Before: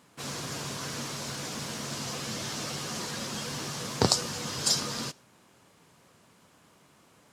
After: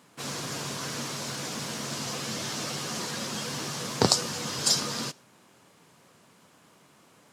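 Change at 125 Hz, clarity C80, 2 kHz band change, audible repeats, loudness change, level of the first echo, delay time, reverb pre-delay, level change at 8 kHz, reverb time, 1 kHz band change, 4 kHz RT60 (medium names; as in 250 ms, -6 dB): +0.5 dB, no reverb, +2.0 dB, no echo, +2.0 dB, no echo, no echo, no reverb, +2.0 dB, no reverb, +2.0 dB, no reverb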